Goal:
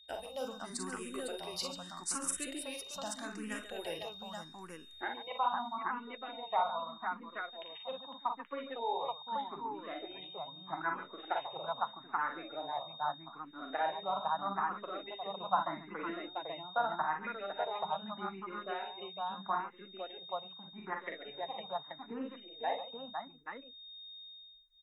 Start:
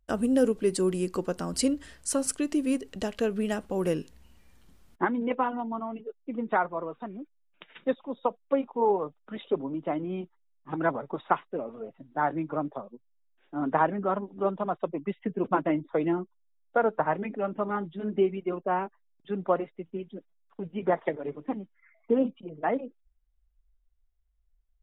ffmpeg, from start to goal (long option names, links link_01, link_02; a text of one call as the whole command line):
ffmpeg -i in.wav -filter_complex "[0:a]lowshelf=frequency=590:width_type=q:width=1.5:gain=-10,aeval=exprs='val(0)+0.00398*sin(2*PI*3700*n/s)':channel_layout=same,asplit=2[link_01][link_02];[link_02]aecho=0:1:42|57|140|506|830:0.501|0.376|0.237|0.531|0.631[link_03];[link_01][link_03]amix=inputs=2:normalize=0,asplit=2[link_04][link_05];[link_05]afreqshift=0.8[link_06];[link_04][link_06]amix=inputs=2:normalize=1,volume=-5.5dB" out.wav